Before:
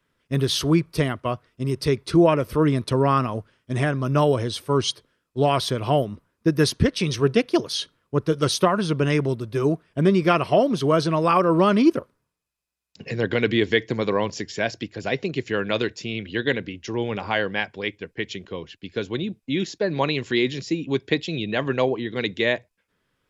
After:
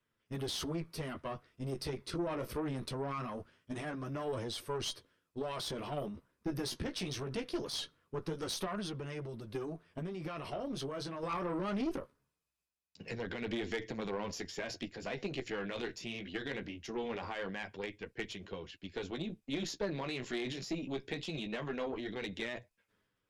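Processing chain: peak limiter -16 dBFS, peak gain reduction 10.5 dB; 8.74–11.23 s: compression, threshold -25 dBFS, peak gain reduction 6 dB; flange 0.22 Hz, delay 8.4 ms, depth 8.8 ms, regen -20%; valve stage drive 24 dB, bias 0.55; dynamic bell 110 Hz, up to -7 dB, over -52 dBFS, Q 3; transient shaper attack +3 dB, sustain +7 dB; trim -6 dB

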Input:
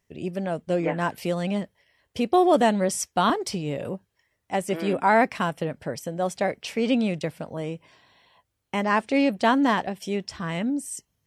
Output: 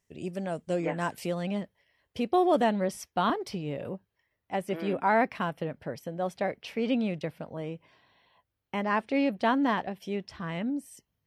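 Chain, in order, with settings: peaking EQ 7.7 kHz +6 dB 0.97 oct, from 1.26 s -6 dB, from 2.64 s -12.5 dB; trim -5 dB

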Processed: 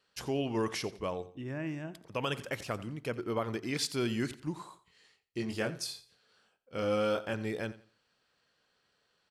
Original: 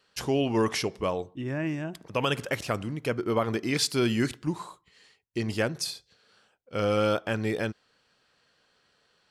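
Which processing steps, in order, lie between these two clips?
4.68–7.34 s: doubling 23 ms -5.5 dB; feedback delay 87 ms, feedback 27%, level -17 dB; trim -7 dB

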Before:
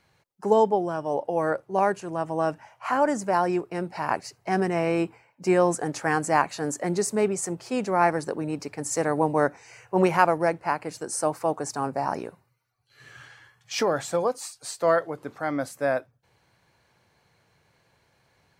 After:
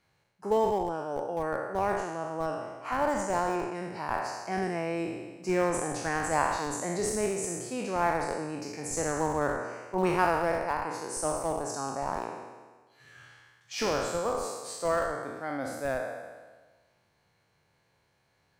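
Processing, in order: spectral sustain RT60 1.38 s; in parallel at -11 dB: Schmitt trigger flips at -15.5 dBFS; on the sum: trim -8.5 dB

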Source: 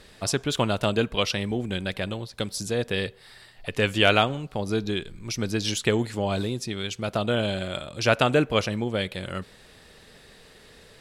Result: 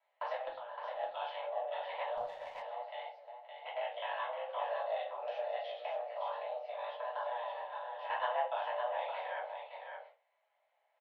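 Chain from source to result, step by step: spectrogram pixelated in time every 50 ms; gate -43 dBFS, range -25 dB; tilt EQ -2.5 dB/octave; compression 10:1, threshold -30 dBFS, peak gain reduction 17 dB; ring modulator 76 Hz; mistuned SSB +300 Hz 280–3100 Hz; random-step tremolo 2.1 Hz, depth 70%; delay 565 ms -6 dB; simulated room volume 140 m³, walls furnished, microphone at 2.9 m; 2.17–2.62 s: sliding maximum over 3 samples; trim -1 dB

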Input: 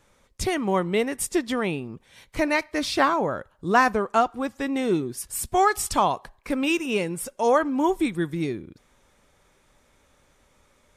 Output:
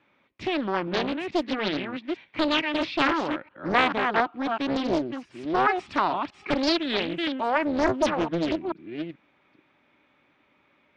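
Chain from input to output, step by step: chunks repeated in reverse 436 ms, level -6 dB; cabinet simulation 170–3500 Hz, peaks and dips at 300 Hz +7 dB, 480 Hz -7 dB, 2.4 kHz +7 dB; loudspeaker Doppler distortion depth 0.96 ms; trim -2.5 dB

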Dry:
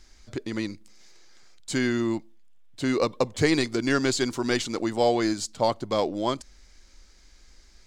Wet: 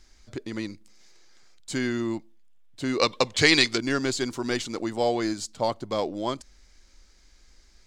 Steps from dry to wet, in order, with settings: 2.99–3.78 s: peaking EQ 3.4 kHz +14 dB 2.9 oct; trim -2.5 dB

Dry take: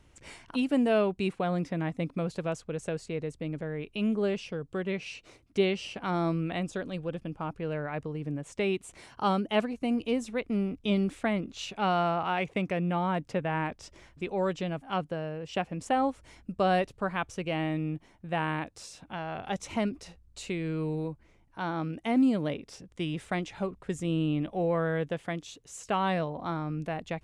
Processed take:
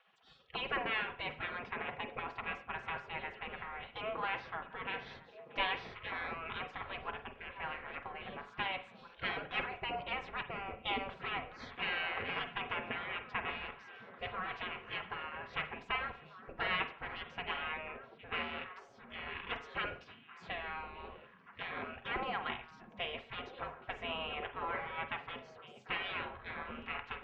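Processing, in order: single-diode clipper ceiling -22.5 dBFS; low-pass 2.8 kHz 24 dB/octave; bass shelf 180 Hz -8 dB; spectral gate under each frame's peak -20 dB weak; treble shelf 2 kHz -8.5 dB; comb of notches 300 Hz; repeats whose band climbs or falls 656 ms, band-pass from 180 Hz, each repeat 1.4 oct, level -7.5 dB; reverberation, pre-delay 39 ms, DRR 9 dB; trim +14 dB

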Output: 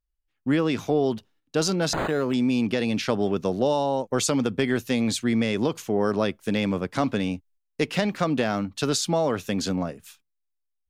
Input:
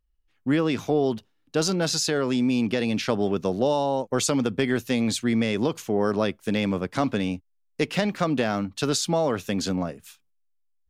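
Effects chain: gate -56 dBFS, range -9 dB; 1.93–2.34 s: decimation joined by straight lines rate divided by 8×

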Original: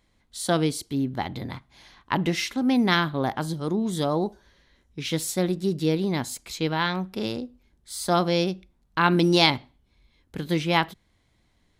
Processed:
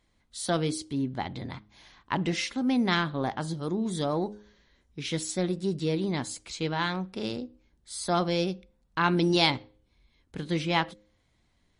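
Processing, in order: de-hum 104.2 Hz, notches 5; in parallel at -10.5 dB: saturation -20.5 dBFS, distortion -10 dB; on the sum: trim -5 dB; MP3 40 kbps 32 kHz

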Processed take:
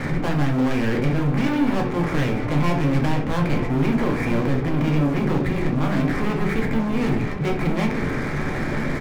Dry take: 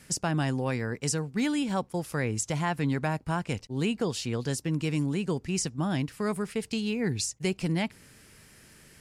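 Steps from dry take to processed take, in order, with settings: spectral levelling over time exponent 0.6; Chebyshev low-pass 2.4 kHz, order 10; bass shelf 63 Hz +10.5 dB; hum notches 60/120/180/240/300/360/420/480 Hz; waveshaping leveller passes 5; peak limiter -20.5 dBFS, peak gain reduction 7 dB; echo from a far wall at 160 m, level -9 dB; reverberation RT60 0.45 s, pre-delay 4 ms, DRR 0.5 dB; trim -2 dB

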